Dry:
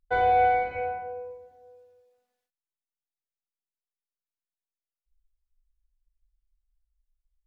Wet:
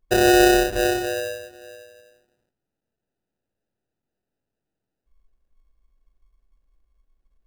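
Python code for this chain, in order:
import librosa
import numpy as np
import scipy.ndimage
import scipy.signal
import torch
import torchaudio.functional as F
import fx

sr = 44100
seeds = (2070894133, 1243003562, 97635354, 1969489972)

p1 = fx.rider(x, sr, range_db=5, speed_s=0.5)
p2 = x + (p1 * librosa.db_to_amplitude(2.5))
y = fx.sample_hold(p2, sr, seeds[0], rate_hz=1100.0, jitter_pct=0)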